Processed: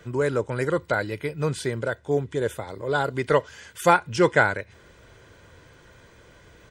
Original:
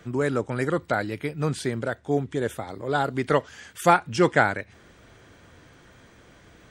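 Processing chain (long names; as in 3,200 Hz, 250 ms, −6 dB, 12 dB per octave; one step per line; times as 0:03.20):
comb filter 2 ms, depth 40%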